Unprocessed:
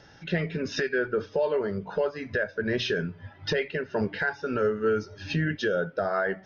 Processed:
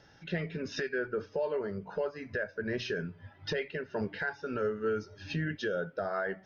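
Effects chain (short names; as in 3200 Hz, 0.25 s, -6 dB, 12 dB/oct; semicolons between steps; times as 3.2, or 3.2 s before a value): 0.9–3.06 bell 3500 Hz -7.5 dB 0.26 oct; gain -6.5 dB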